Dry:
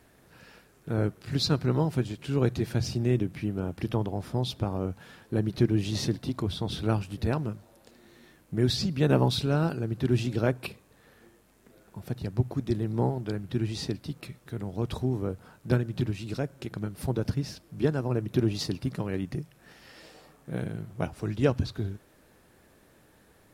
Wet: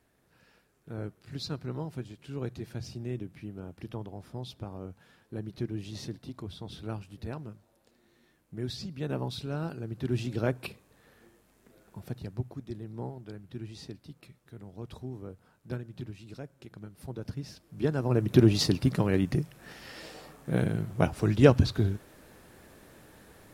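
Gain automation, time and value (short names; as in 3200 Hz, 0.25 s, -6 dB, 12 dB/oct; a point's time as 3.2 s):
9.24 s -10.5 dB
10.54 s -2.5 dB
11.99 s -2.5 dB
12.67 s -11.5 dB
17.05 s -11.5 dB
17.84 s -3 dB
18.32 s +5.5 dB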